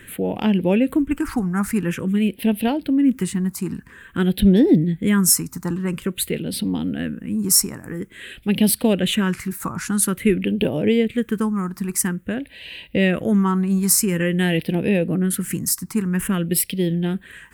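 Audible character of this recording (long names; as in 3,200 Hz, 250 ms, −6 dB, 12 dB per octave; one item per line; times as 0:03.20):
phaser sweep stages 4, 0.49 Hz, lowest notch 520–1,200 Hz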